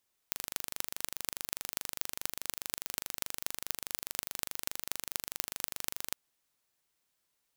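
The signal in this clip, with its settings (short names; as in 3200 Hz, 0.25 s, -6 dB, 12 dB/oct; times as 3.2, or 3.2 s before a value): pulse train 24.8/s, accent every 6, -3.5 dBFS 5.81 s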